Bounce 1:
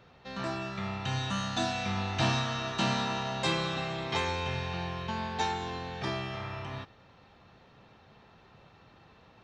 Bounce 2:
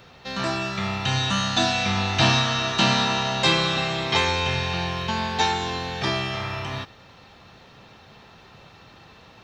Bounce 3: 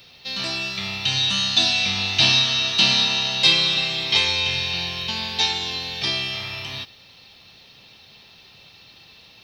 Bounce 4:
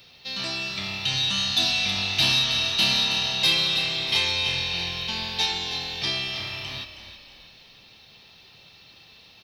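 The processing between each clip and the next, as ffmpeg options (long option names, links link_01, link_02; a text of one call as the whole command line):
ffmpeg -i in.wav -filter_complex "[0:a]acrossover=split=5800[link_01][link_02];[link_02]acompressor=threshold=-59dB:ratio=4:attack=1:release=60[link_03];[link_01][link_03]amix=inputs=2:normalize=0,highshelf=frequency=3000:gain=9.5,volume=7.5dB" out.wav
ffmpeg -i in.wav -af "aexciter=amount=1.2:drive=4.5:freq=4000,highshelf=frequency=2000:width_type=q:width=1.5:gain=9.5,volume=-6.5dB" out.wav
ffmpeg -i in.wav -filter_complex "[0:a]asoftclip=type=tanh:threshold=-9.5dB,asplit=5[link_01][link_02][link_03][link_04][link_05];[link_02]adelay=319,afreqshift=-41,volume=-11dB[link_06];[link_03]adelay=638,afreqshift=-82,volume=-18.3dB[link_07];[link_04]adelay=957,afreqshift=-123,volume=-25.7dB[link_08];[link_05]adelay=1276,afreqshift=-164,volume=-33dB[link_09];[link_01][link_06][link_07][link_08][link_09]amix=inputs=5:normalize=0,volume=-3dB" out.wav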